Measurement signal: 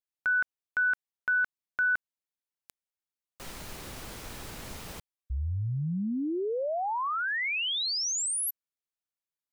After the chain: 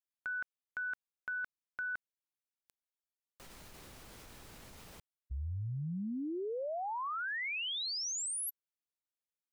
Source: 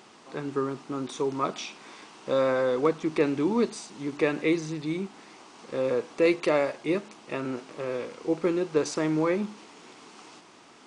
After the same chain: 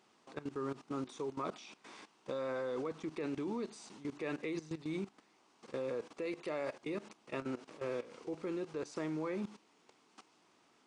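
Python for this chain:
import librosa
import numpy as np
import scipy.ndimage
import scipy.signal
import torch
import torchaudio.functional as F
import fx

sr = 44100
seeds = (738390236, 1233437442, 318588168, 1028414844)

y = fx.level_steps(x, sr, step_db=16)
y = y * librosa.db_to_amplitude(-5.5)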